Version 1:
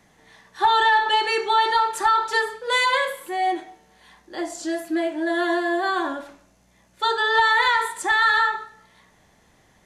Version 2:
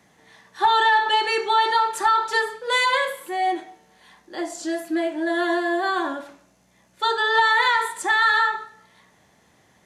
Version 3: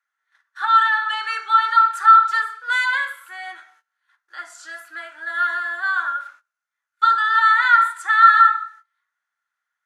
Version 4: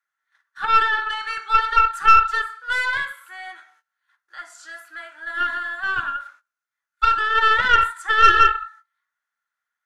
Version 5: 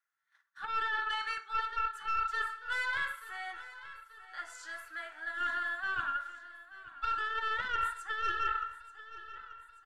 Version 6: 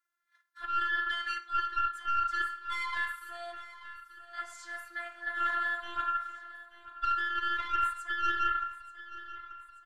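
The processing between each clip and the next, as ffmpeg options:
ffmpeg -i in.wav -af "highpass=91" out.wav
ffmpeg -i in.wav -af "agate=range=-21dB:threshold=-48dB:ratio=16:detection=peak,highpass=frequency=1400:width_type=q:width=12,volume=-7dB" out.wav
ffmpeg -i in.wav -af "aeval=exprs='(tanh(2.24*val(0)+0.8)-tanh(0.8))/2.24':channel_layout=same,volume=2.5dB" out.wav
ffmpeg -i in.wav -af "areverse,acompressor=threshold=-25dB:ratio=6,areverse,aecho=1:1:884|1768|2652|3536|4420:0.158|0.0903|0.0515|0.0294|0.0167,volume=-5.5dB" out.wav
ffmpeg -i in.wav -af "afftfilt=real='hypot(re,im)*cos(PI*b)':imag='0':win_size=512:overlap=0.75,volume=4dB" out.wav

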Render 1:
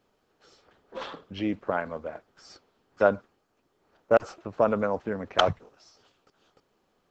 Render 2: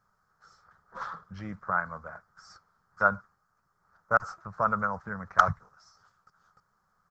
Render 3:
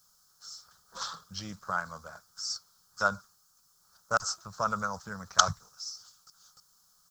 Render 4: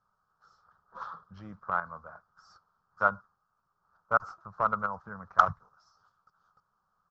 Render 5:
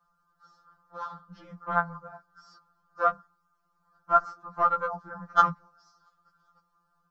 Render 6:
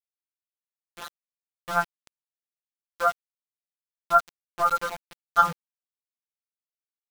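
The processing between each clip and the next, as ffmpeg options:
ffmpeg -i in.wav -af "firequalizer=gain_entry='entry(180,0);entry(270,-19);entry(1300,9);entry(2700,-21);entry(5100,-3)':delay=0.05:min_phase=1" out.wav
ffmpeg -i in.wav -af "aexciter=amount=11.9:drive=7:freq=3100,volume=-3.5dB" out.wav
ffmpeg -i in.wav -filter_complex "[0:a]asplit=2[link_01][link_02];[link_02]acrusher=bits=3:mix=0:aa=0.000001,volume=-7.5dB[link_03];[link_01][link_03]amix=inputs=2:normalize=0,lowpass=frequency=1200:width_type=q:width=1.7,volume=-3.5dB" out.wav
ffmpeg -i in.wav -af "afftfilt=real='re*2.83*eq(mod(b,8),0)':imag='im*2.83*eq(mod(b,8),0)':win_size=2048:overlap=0.75,volume=6.5dB" out.wav
ffmpeg -i in.wav -filter_complex "[0:a]asplit=2[link_01][link_02];[link_02]adelay=13,volume=-7dB[link_03];[link_01][link_03]amix=inputs=2:normalize=0,aeval=exprs='val(0)*gte(abs(val(0)),0.0282)':channel_layout=same" out.wav

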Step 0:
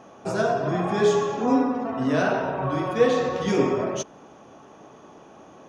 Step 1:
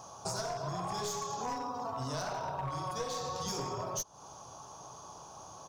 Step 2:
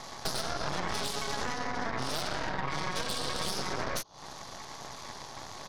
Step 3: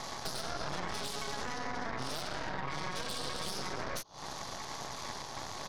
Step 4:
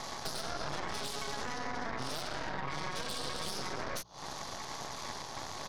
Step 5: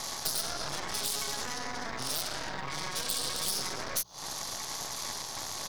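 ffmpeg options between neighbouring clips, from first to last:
ffmpeg -i in.wav -af "firequalizer=gain_entry='entry(120,0);entry(230,-17);entry(980,2);entry(1900,-17);entry(4600,9)':delay=0.05:min_phase=1,aeval=exprs='clip(val(0),-1,0.0447)':channel_layout=same,acompressor=threshold=-37dB:ratio=6,volume=2.5dB" out.wav
ffmpeg -i in.wav -filter_complex "[0:a]lowpass=frequency=4200:width_type=q:width=4,acrossover=split=180|490[link_01][link_02][link_03];[link_01]acompressor=threshold=-52dB:ratio=4[link_04];[link_02]acompressor=threshold=-46dB:ratio=4[link_05];[link_03]acompressor=threshold=-41dB:ratio=4[link_06];[link_04][link_05][link_06]amix=inputs=3:normalize=0,aeval=exprs='0.0531*(cos(1*acos(clip(val(0)/0.0531,-1,1)))-cos(1*PI/2))+0.0237*(cos(6*acos(clip(val(0)/0.0531,-1,1)))-cos(6*PI/2))':channel_layout=same,volume=3dB" out.wav
ffmpeg -i in.wav -af "alimiter=level_in=3.5dB:limit=-24dB:level=0:latency=1:release=188,volume=-3.5dB,volume=2.5dB" out.wav
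ffmpeg -i in.wav -af "bandreject=frequency=60:width_type=h:width=6,bandreject=frequency=120:width_type=h:width=6,bandreject=frequency=180:width_type=h:width=6" out.wav
ffmpeg -i in.wav -af "aemphasis=mode=production:type=75fm" out.wav

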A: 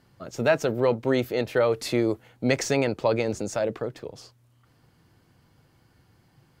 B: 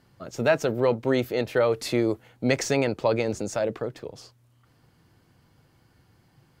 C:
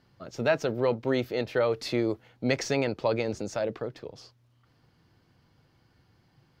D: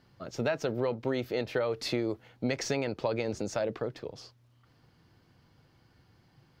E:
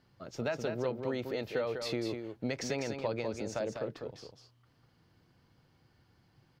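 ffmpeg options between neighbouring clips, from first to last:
ffmpeg -i in.wav -af anull out.wav
ffmpeg -i in.wav -af "highshelf=frequency=6500:width_type=q:width=1.5:gain=-6.5,volume=-3.5dB" out.wav
ffmpeg -i in.wav -af "acompressor=threshold=-27dB:ratio=6,volume=1dB" out.wav
ffmpeg -i in.wav -af "aecho=1:1:198:0.473,volume=-4.5dB" out.wav

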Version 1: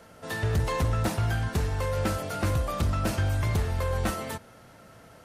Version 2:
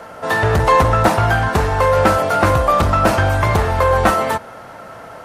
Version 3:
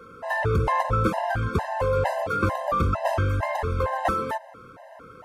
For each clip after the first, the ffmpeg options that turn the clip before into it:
ffmpeg -i in.wav -af "equalizer=frequency=930:width_type=o:width=2.5:gain=13,volume=7.5dB" out.wav
ffmpeg -i in.wav -af "highshelf=frequency=2800:gain=-8,afftfilt=real='re*gt(sin(2*PI*2.2*pts/sr)*(1-2*mod(floor(b*sr/1024/530),2)),0)':imag='im*gt(sin(2*PI*2.2*pts/sr)*(1-2*mod(floor(b*sr/1024/530),2)),0)':win_size=1024:overlap=0.75,volume=-6dB" out.wav

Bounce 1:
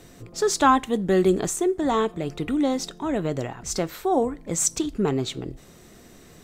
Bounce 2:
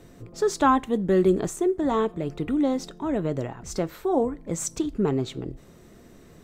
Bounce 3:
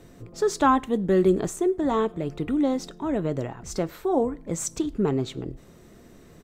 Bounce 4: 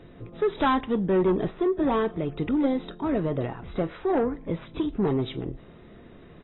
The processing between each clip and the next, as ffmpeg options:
ffmpeg -i in.wav -af "lowpass=frequency=1100:poles=1,aemphasis=mode=production:type=50kf,bandreject=frequency=750:width=18" out.wav
ffmpeg -i in.wav -filter_complex "[0:a]asplit=2[link_01][link_02];[link_02]adelay=105,volume=-29dB,highshelf=frequency=4000:gain=-2.36[link_03];[link_01][link_03]amix=inputs=2:normalize=0" out.wav
ffmpeg -i in.wav -af "asoftclip=type=tanh:threshold=-18.5dB,aresample=16000,aresample=44100,volume=1.5dB" -ar 22050 -c:a aac -b:a 16k out.aac

